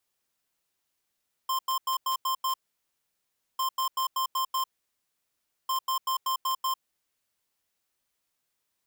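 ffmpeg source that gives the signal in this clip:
ffmpeg -f lavfi -i "aevalsrc='0.0422*(2*lt(mod(1050*t,1),0.5)-1)*clip(min(mod(mod(t,2.1),0.19),0.1-mod(mod(t,2.1),0.19))/0.005,0,1)*lt(mod(t,2.1),1.14)':duration=6.3:sample_rate=44100" out.wav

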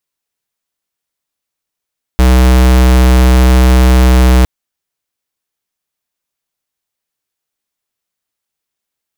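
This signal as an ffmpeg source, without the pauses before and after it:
ffmpeg -f lavfi -i "aevalsrc='0.501*(2*lt(mod(63.2*t,1),0.5)-1)':duration=2.26:sample_rate=44100" out.wav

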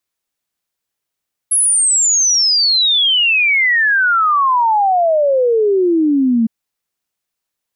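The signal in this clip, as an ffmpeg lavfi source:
ffmpeg -f lavfi -i "aevalsrc='0.316*clip(min(t,4.96-t)/0.01,0,1)*sin(2*PI*11000*4.96/log(220/11000)*(exp(log(220/11000)*t/4.96)-1))':duration=4.96:sample_rate=44100" out.wav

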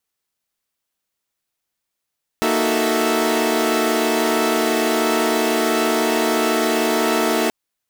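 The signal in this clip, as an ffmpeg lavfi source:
ffmpeg -f lavfi -i "aevalsrc='0.0944*((2*mod(233.08*t,1)-1)+(2*mod(311.13*t,1)-1)+(2*mod(369.99*t,1)-1)+(2*mod(440*t,1)-1)+(2*mod(659.26*t,1)-1))':duration=5.08:sample_rate=44100" out.wav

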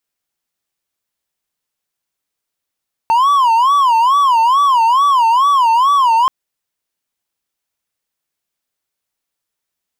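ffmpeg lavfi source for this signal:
ffmpeg -f lavfi -i "aevalsrc='0.473*(1-4*abs(mod((1024.5*t-125.5/(2*PI*2.3)*sin(2*PI*2.3*t))+0.25,1)-0.5))':duration=3.18:sample_rate=44100" out.wav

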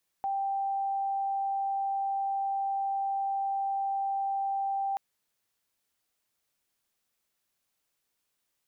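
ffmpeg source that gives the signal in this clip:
ffmpeg -f lavfi -i "aevalsrc='0.0422*sin(2*PI*786*t)':duration=4.73:sample_rate=44100" out.wav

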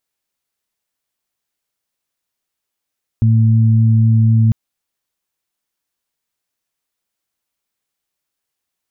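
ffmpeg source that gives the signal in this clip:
ffmpeg -f lavfi -i "aevalsrc='0.376*sin(2*PI*112*t)+0.133*sin(2*PI*224*t)':duration=1.3:sample_rate=44100" out.wav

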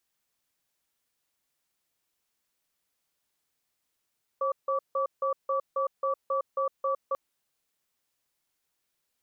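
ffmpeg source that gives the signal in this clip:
ffmpeg -f lavfi -i "aevalsrc='0.0422*(sin(2*PI*540*t)+sin(2*PI*1150*t))*clip(min(mod(t,0.27),0.11-mod(t,0.27))/0.005,0,1)':duration=2.74:sample_rate=44100" out.wav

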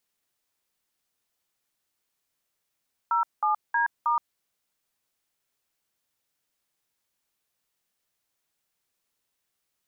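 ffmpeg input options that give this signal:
ffmpeg -f lavfi -i "aevalsrc='0.0668*clip(min(mod(t,0.316),0.122-mod(t,0.316))/0.002,0,1)*(eq(floor(t/0.316),0)*(sin(2*PI*941*mod(t,0.316))+sin(2*PI*1336*mod(t,0.316)))+eq(floor(t/0.316),1)*(sin(2*PI*852*mod(t,0.316))+sin(2*PI*1209*mod(t,0.316)))+eq(floor(t/0.316),2)*(sin(2*PI*941*mod(t,0.316))+sin(2*PI*1633*mod(t,0.316)))+eq(floor(t/0.316),3)*(sin(2*PI*941*mod(t,0.316))+sin(2*PI*1209*mod(t,0.316))))':duration=1.264:sample_rate=44100" out.wav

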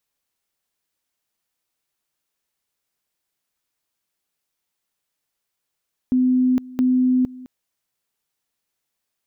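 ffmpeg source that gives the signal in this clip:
ffmpeg -f lavfi -i "aevalsrc='pow(10,(-14-20.5*gte(mod(t,0.67),0.46))/20)*sin(2*PI*254*t)':duration=1.34:sample_rate=44100" out.wav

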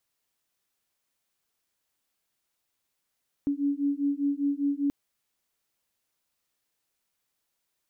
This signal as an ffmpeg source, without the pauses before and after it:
ffmpeg -f lavfi -i "aevalsrc='0.0422*(sin(2*PI*281*t)+sin(2*PI*286*t))':duration=1.43:sample_rate=44100" out.wav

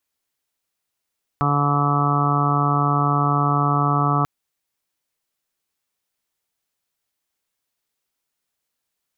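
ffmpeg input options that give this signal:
ffmpeg -f lavfi -i "aevalsrc='0.1*sin(2*PI*144*t)+0.0501*sin(2*PI*288*t)+0.0282*sin(2*PI*432*t)+0.0141*sin(2*PI*576*t)+0.0501*sin(2*PI*720*t)+0.0335*sin(2*PI*864*t)+0.0335*sin(2*PI*1008*t)+0.0794*sin(2*PI*1152*t)+0.0596*sin(2*PI*1296*t)':duration=2.84:sample_rate=44100" out.wav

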